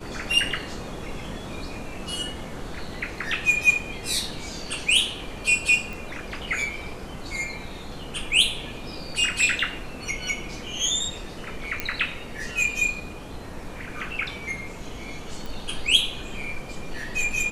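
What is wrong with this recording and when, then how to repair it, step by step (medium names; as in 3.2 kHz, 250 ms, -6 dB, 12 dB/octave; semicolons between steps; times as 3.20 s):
5.93 s: pop
11.80 s: pop -10 dBFS
15.46 s: pop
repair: de-click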